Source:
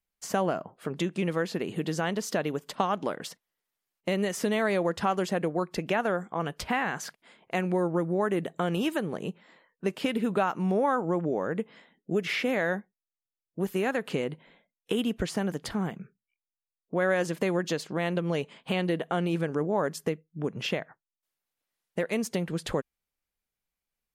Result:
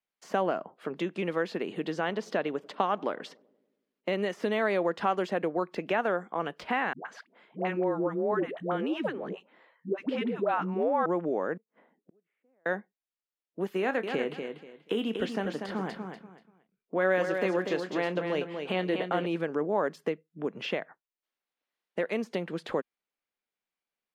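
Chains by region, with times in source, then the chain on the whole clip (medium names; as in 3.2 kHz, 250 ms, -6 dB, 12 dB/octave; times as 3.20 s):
1.91–4.13 s: treble shelf 10 kHz -10 dB + filtered feedback delay 95 ms, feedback 68%, low-pass 830 Hz, level -22.5 dB
6.93–11.06 s: low-pass 2.1 kHz 6 dB/octave + phase dispersion highs, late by 122 ms, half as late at 450 Hz
11.57–12.66 s: low-pass 1.1 kHz + inverted gate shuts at -36 dBFS, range -41 dB
13.79–19.26 s: doubling 27 ms -13 dB + feedback delay 241 ms, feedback 24%, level -6.5 dB
whole clip: de-esser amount 90%; three-band isolator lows -22 dB, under 200 Hz, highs -14 dB, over 4.5 kHz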